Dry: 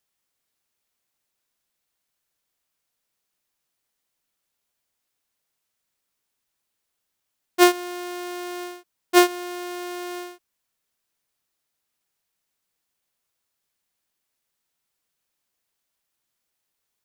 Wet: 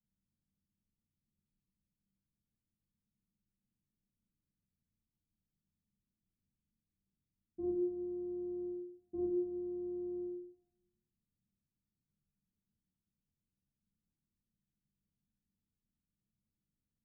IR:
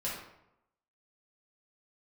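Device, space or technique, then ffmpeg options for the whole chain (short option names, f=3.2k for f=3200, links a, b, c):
club heard from the street: -filter_complex "[0:a]alimiter=limit=-16.5dB:level=0:latency=1:release=158,lowpass=f=240:w=0.5412,lowpass=f=240:w=1.3066[a];[1:a]atrim=start_sample=2205[b];[a][b]afir=irnorm=-1:irlink=0,volume=4.5dB"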